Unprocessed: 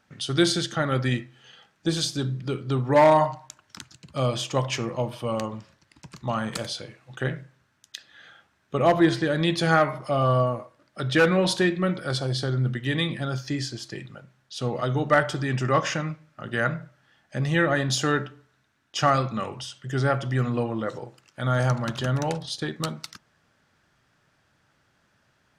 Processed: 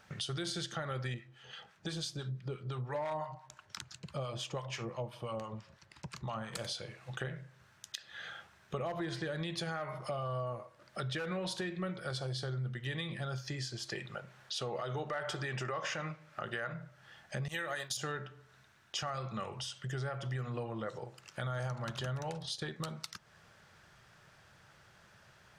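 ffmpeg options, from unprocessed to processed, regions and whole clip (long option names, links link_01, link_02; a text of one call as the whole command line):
ffmpeg -i in.wav -filter_complex "[0:a]asettb=1/sr,asplit=3[link_01][link_02][link_03];[link_01]atrim=end=1.144[link_04];[link_02]atrim=start=1.14:end=6.55,asetpts=PTS-STARTPTS,afade=type=in:duration=0.004:curve=qsin,afade=type=out:start_time=5.406:duration=0.004:curve=qsin,highshelf=frequency=5600:gain=-5,acrossover=split=910[link_05][link_06];[link_05]aeval=exprs='val(0)*(1-0.7/2+0.7/2*cos(2*PI*5.9*n/s))':channel_layout=same[link_07];[link_06]aeval=exprs='val(0)*(1-0.7/2-0.7/2*cos(2*PI*5.9*n/s))':channel_layout=same[link_08];[link_07][link_08]amix=inputs=2:normalize=0[link_09];[link_03]atrim=start=6.546[link_10];[link_04][link_09]acrossfade=duration=0.004:curve1=hsin:curve2=qsin[link_11];[link_11][link_10]acrossfade=duration=0.004:curve1=qsin:curve2=hsin,asettb=1/sr,asplit=3[link_12][link_13][link_14];[link_12]atrim=end=13.884[link_15];[link_13]atrim=start=13.88:end=16.73,asetpts=PTS-STARTPTS,afade=type=in:duration=0.004:curve=qsin,afade=type=out:start_time=2.846:duration=0.004:curve=qsin,bass=frequency=250:gain=-8,treble=frequency=4000:gain=-3,acontrast=50[link_16];[link_14]atrim=start=16.726[link_17];[link_15][link_16]acrossfade=duration=0.004:curve1=hsin:curve2=qsin[link_18];[link_18][link_17]acrossfade=duration=0.004:curve1=qsin:curve2=hsin,asettb=1/sr,asplit=3[link_19][link_20][link_21];[link_19]atrim=end=17.484[link_22];[link_20]atrim=start=17.48:end=17.97,asetpts=PTS-STARTPTS,afade=type=in:duration=0.004:curve=qsin,afade=type=out:start_time=0.486:duration=0.004:curve=qsin,aemphasis=mode=production:type=riaa,agate=range=-33dB:threshold=-27dB:ratio=3:release=100:detection=peak[link_23];[link_21]atrim=start=17.966[link_24];[link_22][link_23]acrossfade=duration=0.004:curve1=hsin:curve2=qsin[link_25];[link_25][link_24]acrossfade=duration=0.004:curve1=qsin:curve2=hsin,equalizer=frequency=270:width_type=o:width=0.35:gain=-14.5,alimiter=limit=-17dB:level=0:latency=1:release=107,acompressor=threshold=-47dB:ratio=3,volume=5.5dB" out.wav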